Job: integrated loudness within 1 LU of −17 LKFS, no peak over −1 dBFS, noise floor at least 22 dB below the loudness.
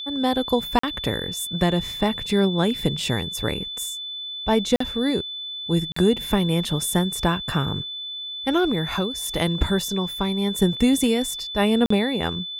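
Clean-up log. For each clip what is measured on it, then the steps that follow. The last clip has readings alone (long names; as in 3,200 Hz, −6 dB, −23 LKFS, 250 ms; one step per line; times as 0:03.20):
number of dropouts 4; longest dropout 44 ms; interfering tone 3,500 Hz; level of the tone −30 dBFS; integrated loudness −23.0 LKFS; sample peak −5.5 dBFS; target loudness −17.0 LKFS
→ repair the gap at 0:00.79/0:04.76/0:05.92/0:11.86, 44 ms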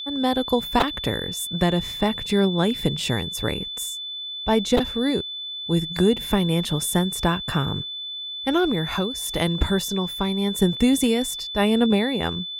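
number of dropouts 0; interfering tone 3,500 Hz; level of the tone −30 dBFS
→ notch filter 3,500 Hz, Q 30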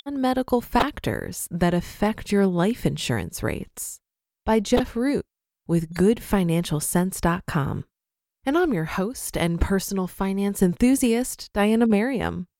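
interfering tone none found; integrated loudness −23.5 LKFS; sample peak −5.5 dBFS; target loudness −17.0 LKFS
→ level +6.5 dB
brickwall limiter −1 dBFS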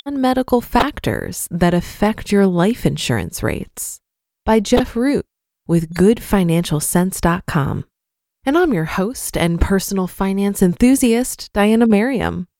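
integrated loudness −17.5 LKFS; sample peak −1.0 dBFS; background noise floor −81 dBFS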